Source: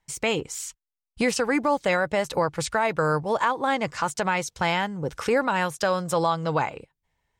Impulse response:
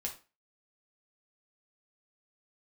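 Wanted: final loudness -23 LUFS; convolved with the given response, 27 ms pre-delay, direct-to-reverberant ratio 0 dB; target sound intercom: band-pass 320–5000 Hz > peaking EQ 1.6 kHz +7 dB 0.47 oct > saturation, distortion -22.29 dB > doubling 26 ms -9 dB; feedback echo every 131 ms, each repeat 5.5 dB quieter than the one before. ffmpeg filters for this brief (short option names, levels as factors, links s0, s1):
-filter_complex "[0:a]aecho=1:1:131|262|393|524|655|786|917:0.531|0.281|0.149|0.079|0.0419|0.0222|0.0118,asplit=2[s0][s1];[1:a]atrim=start_sample=2205,adelay=27[s2];[s1][s2]afir=irnorm=-1:irlink=0,volume=1[s3];[s0][s3]amix=inputs=2:normalize=0,highpass=320,lowpass=5000,equalizer=f=1600:t=o:w=0.47:g=7,asoftclip=threshold=0.376,asplit=2[s4][s5];[s5]adelay=26,volume=0.355[s6];[s4][s6]amix=inputs=2:normalize=0,volume=0.75"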